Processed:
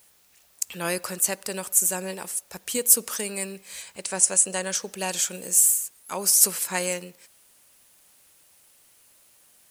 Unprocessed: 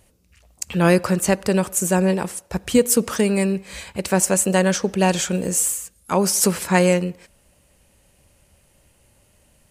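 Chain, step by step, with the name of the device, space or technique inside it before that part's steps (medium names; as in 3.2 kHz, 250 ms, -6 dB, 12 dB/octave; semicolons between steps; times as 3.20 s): 3.82–4.75 s: Chebyshev low-pass 10 kHz, order 5; turntable without a phono preamp (RIAA curve recording; white noise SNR 34 dB); trim -10 dB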